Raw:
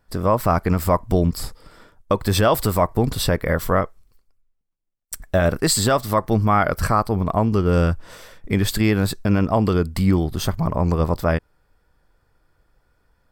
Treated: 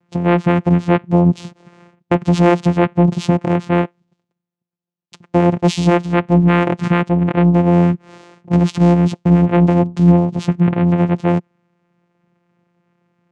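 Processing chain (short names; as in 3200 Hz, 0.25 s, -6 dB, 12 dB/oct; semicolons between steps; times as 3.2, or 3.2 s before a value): vocoder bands 4, saw 174 Hz; gain +7 dB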